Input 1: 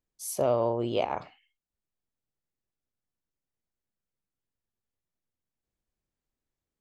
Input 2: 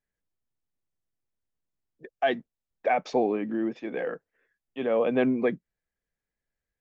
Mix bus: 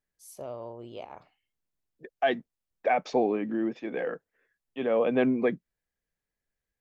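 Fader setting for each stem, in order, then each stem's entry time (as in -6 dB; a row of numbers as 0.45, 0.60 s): -13.5, -0.5 dB; 0.00, 0.00 s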